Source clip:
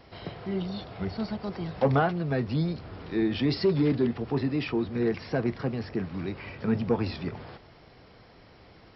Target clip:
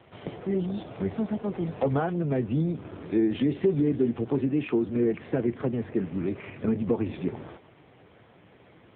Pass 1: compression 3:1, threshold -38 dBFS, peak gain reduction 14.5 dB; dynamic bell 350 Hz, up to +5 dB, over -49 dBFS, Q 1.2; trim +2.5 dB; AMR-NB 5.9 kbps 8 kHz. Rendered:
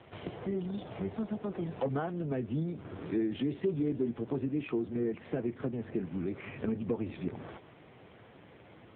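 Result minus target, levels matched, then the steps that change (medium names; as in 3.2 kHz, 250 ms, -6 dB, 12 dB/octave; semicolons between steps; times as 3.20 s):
compression: peak gain reduction +7.5 dB
change: compression 3:1, threshold -27 dBFS, peak gain reduction 7 dB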